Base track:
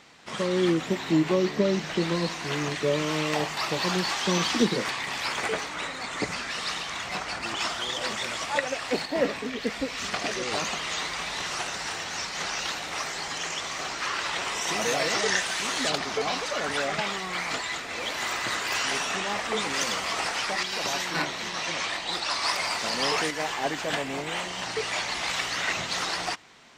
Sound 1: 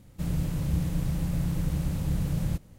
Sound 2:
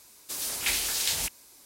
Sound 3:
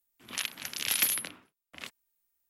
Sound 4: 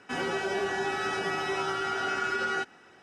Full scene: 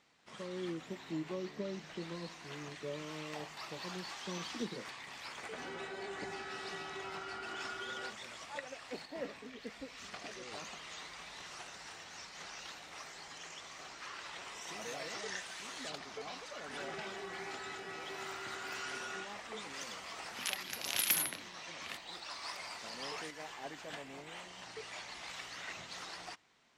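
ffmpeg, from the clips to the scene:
ffmpeg -i bed.wav -i cue0.wav -i cue1.wav -i cue2.wav -i cue3.wav -filter_complex "[4:a]asplit=2[link_01][link_02];[0:a]volume=-17dB[link_03];[link_01]aresample=11025,aresample=44100[link_04];[3:a]acrusher=bits=7:mode=log:mix=0:aa=0.000001[link_05];[link_04]atrim=end=3.02,asetpts=PTS-STARTPTS,volume=-14.5dB,afade=type=in:duration=0.004:curve=hsin,afade=type=out:start_time=3.016:duration=0.004:curve=hsin,adelay=5470[link_06];[link_02]atrim=end=3.02,asetpts=PTS-STARTPTS,volume=-16dB,afade=type=in:duration=0.004:curve=hsin,afade=type=out:start_time=3.016:duration=0.004:curve=hsin,adelay=16610[link_07];[link_05]atrim=end=2.49,asetpts=PTS-STARTPTS,volume=-4.5dB,afade=type=in:duration=0.004:curve=hsin,afade=type=out:start_time=2.486:duration=0.004:curve=hsin,adelay=20080[link_08];[link_03][link_06][link_07][link_08]amix=inputs=4:normalize=0" out.wav

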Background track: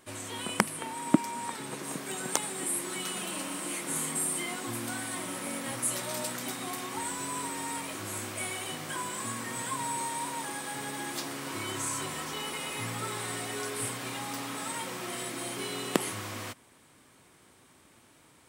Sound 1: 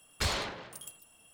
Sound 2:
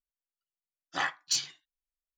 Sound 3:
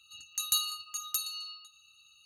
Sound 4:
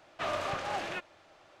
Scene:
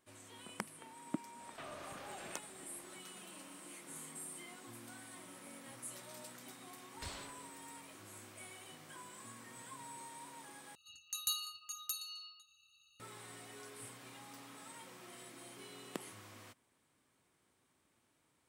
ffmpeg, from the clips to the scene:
ffmpeg -i bed.wav -i cue0.wav -i cue1.wav -i cue2.wav -i cue3.wav -filter_complex "[0:a]volume=-17dB[link_01];[4:a]acompressor=threshold=-44dB:ratio=6:attack=3.2:release=140:knee=1:detection=peak[link_02];[link_01]asplit=2[link_03][link_04];[link_03]atrim=end=10.754[link_05];[3:a]atrim=end=2.25,asetpts=PTS-STARTPTS,volume=-8dB[link_06];[link_04]atrim=start=12.996[link_07];[link_02]atrim=end=1.6,asetpts=PTS-STARTPTS,volume=-3dB,afade=type=in:duration=0.004:curve=hsin,afade=type=out:start_time=1.596:duration=0.004:curve=hsin,adelay=1390[link_08];[1:a]atrim=end=1.33,asetpts=PTS-STARTPTS,volume=-16.5dB,afade=type=in:duration=0.004:curve=hsin,afade=type=out:start_time=1.326:duration=0.004:curve=hsin,adelay=6810[link_09];[link_05][link_06]acrossfade=duration=0.004:curve1=hsin:curve2=hsin[link_10];[link_10][link_07]acrossfade=duration=0.004:curve1=hsin:curve2=hsin[link_11];[link_11][link_08][link_09]amix=inputs=3:normalize=0" out.wav

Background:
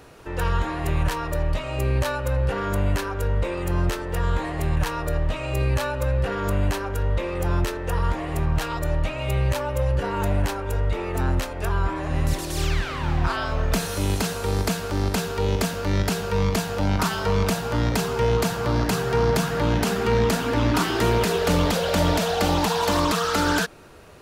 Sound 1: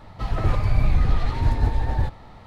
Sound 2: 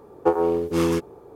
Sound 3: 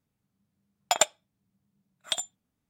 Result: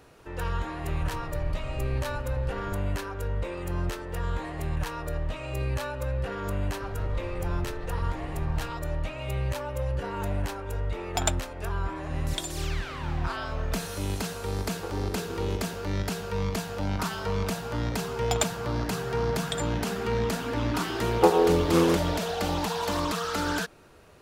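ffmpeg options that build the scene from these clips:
ffmpeg -i bed.wav -i cue0.wav -i cue1.wav -i cue2.wav -filter_complex "[1:a]asplit=2[link_01][link_02];[3:a]asplit=2[link_03][link_04];[2:a]asplit=2[link_05][link_06];[0:a]volume=-7dB[link_07];[link_02]acompressor=threshold=-20dB:ratio=6:attack=3.2:release=140:knee=1:detection=peak[link_08];[link_05]acompressor=threshold=-36dB:ratio=6:attack=3.2:release=140:knee=1:detection=peak[link_09];[link_06]equalizer=frequency=900:width=1.5:gain=3.5[link_10];[link_01]atrim=end=2.46,asetpts=PTS-STARTPTS,volume=-17dB,afade=type=in:duration=0.004:curve=hsin,afade=type=out:start_time=2.456:duration=0.004:curve=hsin,adelay=690[link_11];[link_08]atrim=end=2.46,asetpts=PTS-STARTPTS,volume=-12.5dB,afade=type=in:duration=0.004:curve=hsin,afade=type=out:start_time=2.456:duration=0.004:curve=hsin,adelay=6610[link_12];[link_03]atrim=end=2.69,asetpts=PTS-STARTPTS,volume=-5dB,afade=type=in:duration=0.004:curve=hsin,afade=type=out:start_time=2.686:duration=0.004:curve=hsin,adelay=452466S[link_13];[link_09]atrim=end=1.35,asetpts=PTS-STARTPTS,volume=-0.5dB,afade=type=in:duration=0.004:curve=hsin,afade=type=out:start_time=1.346:duration=0.004:curve=hsin,adelay=14580[link_14];[link_04]atrim=end=2.69,asetpts=PTS-STARTPTS,volume=-5.5dB,afade=type=in:duration=0.004:curve=hsin,afade=type=out:start_time=2.686:duration=0.004:curve=hsin,adelay=17400[link_15];[link_10]atrim=end=1.35,asetpts=PTS-STARTPTS,volume=-1dB,afade=type=in:duration=0.004:curve=hsin,afade=type=out:start_time=1.346:duration=0.004:curve=hsin,adelay=20970[link_16];[link_07][link_11][link_12][link_13][link_14][link_15][link_16]amix=inputs=7:normalize=0" out.wav

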